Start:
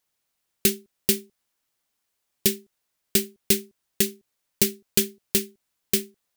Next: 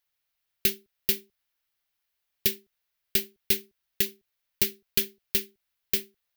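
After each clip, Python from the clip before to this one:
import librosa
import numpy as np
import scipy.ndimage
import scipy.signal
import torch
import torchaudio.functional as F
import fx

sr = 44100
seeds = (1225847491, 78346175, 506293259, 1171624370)

y = fx.graphic_eq(x, sr, hz=(125, 250, 500, 1000, 8000), db=(-5, -12, -5, -5, -11))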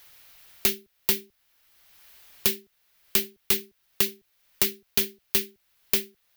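y = np.clip(10.0 ** (22.0 / 20.0) * x, -1.0, 1.0) / 10.0 ** (22.0 / 20.0)
y = fx.band_squash(y, sr, depth_pct=70)
y = F.gain(torch.from_numpy(y), 6.5).numpy()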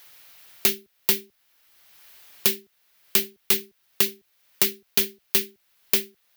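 y = fx.highpass(x, sr, hz=130.0, slope=6)
y = F.gain(torch.from_numpy(y), 2.5).numpy()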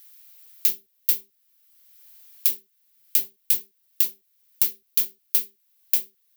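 y = scipy.signal.lfilter([1.0, -0.8], [1.0], x)
y = F.gain(torch.from_numpy(y), -3.0).numpy()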